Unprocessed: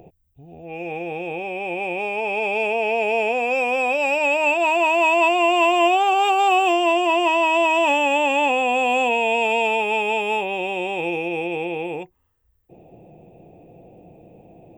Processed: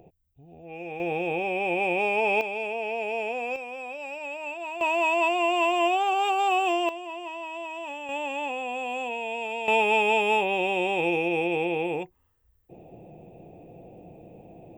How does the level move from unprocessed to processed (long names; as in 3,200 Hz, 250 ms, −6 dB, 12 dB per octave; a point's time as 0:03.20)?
−7 dB
from 0:01.00 +0.5 dB
from 0:02.41 −9 dB
from 0:03.56 −16 dB
from 0:04.81 −6.5 dB
from 0:06.89 −18 dB
from 0:08.09 −12 dB
from 0:09.68 −0.5 dB